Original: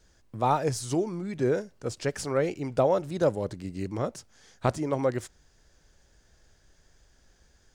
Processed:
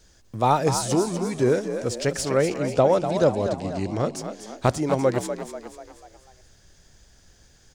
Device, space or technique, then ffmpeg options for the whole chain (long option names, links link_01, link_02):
exciter from parts: -filter_complex "[0:a]asettb=1/sr,asplit=3[link_01][link_02][link_03];[link_01]atrim=end=2.574[link_04];[link_02]atrim=start=2.57:end=4.16,asetpts=PTS-STARTPTS,afade=type=in:duration=0.004:curve=qsin,afade=type=out:start_time=1.586:duration=0.004:curve=qsin,lowpass=7300[link_05];[link_03]atrim=start=4.156[link_06];[link_04][link_05]acrossfade=duration=0.004:curve1=hsin:curve2=qsin[link_07];[link_07][link_06]acrossfade=duration=0.004:curve1=qsin:curve2=hsin,asplit=6[link_08][link_09][link_10][link_11][link_12][link_13];[link_09]adelay=245,afreqshift=52,volume=-9dB[link_14];[link_10]adelay=490,afreqshift=104,volume=-15.4dB[link_15];[link_11]adelay=735,afreqshift=156,volume=-21.8dB[link_16];[link_12]adelay=980,afreqshift=208,volume=-28.1dB[link_17];[link_13]adelay=1225,afreqshift=260,volume=-34.5dB[link_18];[link_08][link_14][link_15][link_16][link_17][link_18]amix=inputs=6:normalize=0,asplit=2[link_19][link_20];[link_20]highpass=2200,asoftclip=type=tanh:threshold=-33.5dB,volume=-5dB[link_21];[link_19][link_21]amix=inputs=2:normalize=0,volume=5dB"